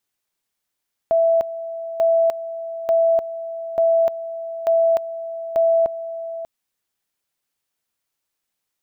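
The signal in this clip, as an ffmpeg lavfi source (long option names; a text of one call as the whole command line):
ffmpeg -f lavfi -i "aevalsrc='pow(10,(-13-13.5*gte(mod(t,0.89),0.3))/20)*sin(2*PI*662*t)':duration=5.34:sample_rate=44100" out.wav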